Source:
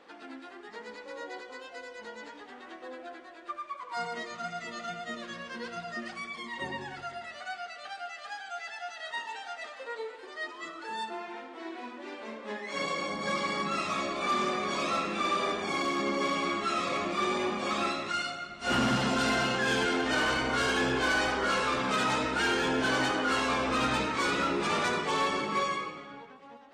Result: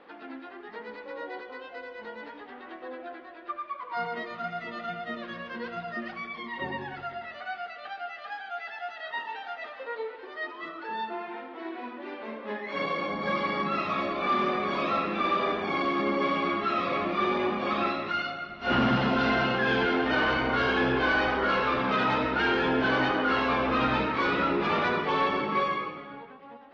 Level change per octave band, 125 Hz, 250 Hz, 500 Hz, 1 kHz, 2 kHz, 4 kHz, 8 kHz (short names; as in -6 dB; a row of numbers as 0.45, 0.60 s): +3.5 dB, +3.5 dB, +3.5 dB, +3.0 dB, +2.0 dB, -1.5 dB, under -15 dB